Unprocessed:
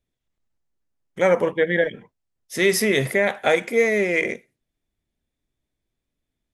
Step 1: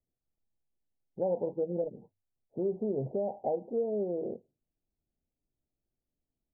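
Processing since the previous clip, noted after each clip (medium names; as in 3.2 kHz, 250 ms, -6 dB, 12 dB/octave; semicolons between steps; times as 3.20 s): steep low-pass 880 Hz 96 dB/octave; hum notches 50/100 Hz; compression 2:1, threshold -24 dBFS, peak gain reduction 6 dB; trim -7 dB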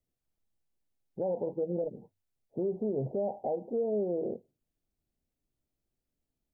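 peak limiter -26 dBFS, peak gain reduction 5.5 dB; trim +2 dB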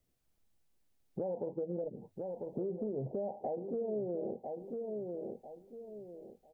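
feedback delay 997 ms, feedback 21%, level -11 dB; compression 3:1, threshold -45 dBFS, peak gain reduction 13.5 dB; trim +6.5 dB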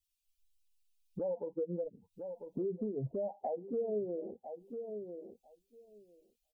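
expander on every frequency bin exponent 2; trim +4 dB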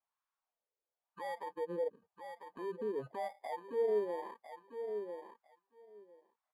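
bit-reversed sample order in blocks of 32 samples; wah-wah 0.96 Hz 470–1100 Hz, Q 3.3; transient shaper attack -5 dB, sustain 0 dB; trim +9 dB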